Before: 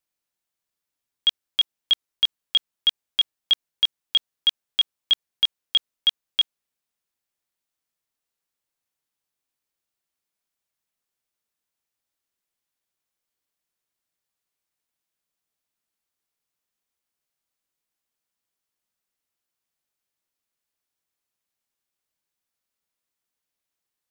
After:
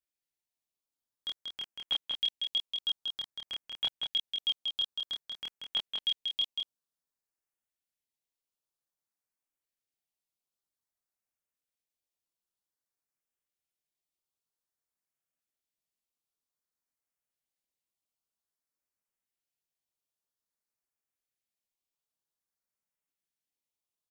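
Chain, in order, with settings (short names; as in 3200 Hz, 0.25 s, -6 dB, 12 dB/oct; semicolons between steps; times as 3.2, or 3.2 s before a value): LFO notch saw up 0.52 Hz 940–4800 Hz; chorus voices 2, 0.71 Hz, delay 27 ms, depth 4.2 ms; on a send: echo 0.186 s -4.5 dB; on the sum: gain -6 dB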